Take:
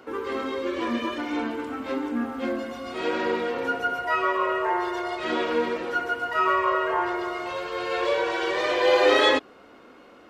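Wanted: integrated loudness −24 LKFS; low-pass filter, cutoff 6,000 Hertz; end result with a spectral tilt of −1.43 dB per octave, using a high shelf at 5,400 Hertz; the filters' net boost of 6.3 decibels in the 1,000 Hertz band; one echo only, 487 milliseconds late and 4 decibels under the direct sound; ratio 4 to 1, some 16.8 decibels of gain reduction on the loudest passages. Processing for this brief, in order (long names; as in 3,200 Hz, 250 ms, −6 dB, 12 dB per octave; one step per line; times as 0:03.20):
low-pass filter 6,000 Hz
parametric band 1,000 Hz +8 dB
high-shelf EQ 5,400 Hz −7.5 dB
downward compressor 4 to 1, threshold −34 dBFS
single-tap delay 487 ms −4 dB
level +9.5 dB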